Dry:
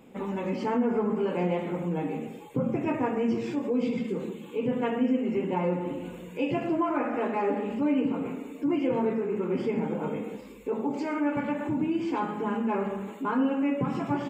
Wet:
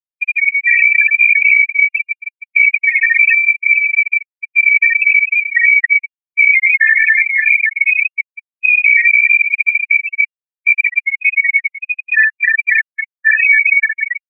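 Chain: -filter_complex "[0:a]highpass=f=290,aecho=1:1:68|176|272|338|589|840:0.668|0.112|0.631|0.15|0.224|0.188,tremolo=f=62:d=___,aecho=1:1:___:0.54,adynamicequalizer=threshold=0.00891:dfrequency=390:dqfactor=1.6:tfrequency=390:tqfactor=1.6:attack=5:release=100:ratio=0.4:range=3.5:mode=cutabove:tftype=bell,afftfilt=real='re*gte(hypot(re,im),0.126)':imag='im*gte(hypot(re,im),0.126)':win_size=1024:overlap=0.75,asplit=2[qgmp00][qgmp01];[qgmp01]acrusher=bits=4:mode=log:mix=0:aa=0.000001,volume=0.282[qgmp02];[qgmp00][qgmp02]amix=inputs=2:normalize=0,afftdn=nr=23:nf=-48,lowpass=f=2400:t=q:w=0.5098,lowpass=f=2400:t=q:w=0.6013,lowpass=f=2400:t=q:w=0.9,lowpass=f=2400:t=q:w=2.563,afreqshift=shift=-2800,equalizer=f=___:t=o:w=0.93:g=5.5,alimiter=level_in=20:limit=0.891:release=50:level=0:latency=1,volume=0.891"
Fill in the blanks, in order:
0.889, 1.9, 580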